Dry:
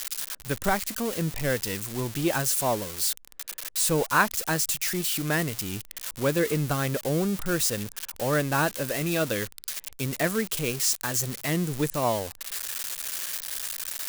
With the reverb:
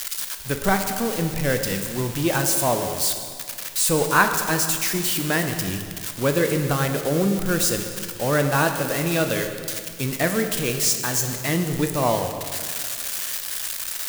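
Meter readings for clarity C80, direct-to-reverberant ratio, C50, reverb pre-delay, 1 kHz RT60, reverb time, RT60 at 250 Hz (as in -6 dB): 7.5 dB, 5.0 dB, 7.0 dB, 10 ms, 2.1 s, 2.1 s, 2.2 s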